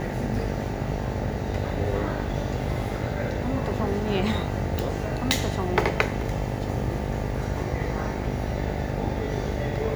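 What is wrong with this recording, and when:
mains buzz 50 Hz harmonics 18 −31 dBFS
0:04.79: click

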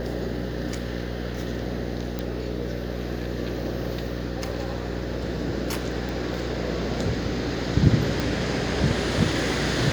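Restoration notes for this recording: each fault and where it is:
mains buzz 60 Hz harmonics 9 −31 dBFS
0:02.19: click −15 dBFS
0:06.09: click
0:08.20: click −12 dBFS

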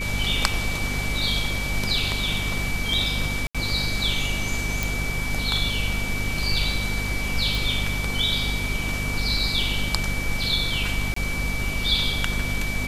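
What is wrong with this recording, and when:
mains hum 50 Hz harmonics 5 −30 dBFS
whistle 2,300 Hz −29 dBFS
0:03.47–0:03.55: drop-out 76 ms
0:04.83: click
0:07.55: click
0:11.14–0:11.16: drop-out 24 ms

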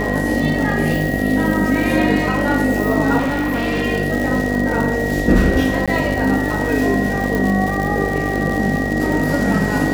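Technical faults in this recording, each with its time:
mains buzz 50 Hz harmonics 15 −23 dBFS
surface crackle 160 per second −21 dBFS
whistle 1,900 Hz −24 dBFS
0:03.18–0:03.83: clipping −15.5 dBFS
0:05.86–0:05.88: drop-out 16 ms
0:07.35: click

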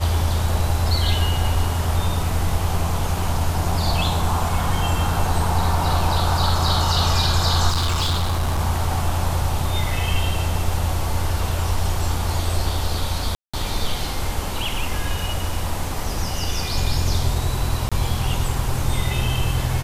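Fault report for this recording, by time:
0:07.69–0:08.61: clipping −17 dBFS
0:13.35–0:13.54: drop-out 185 ms
0:17.89–0:17.92: drop-out 26 ms

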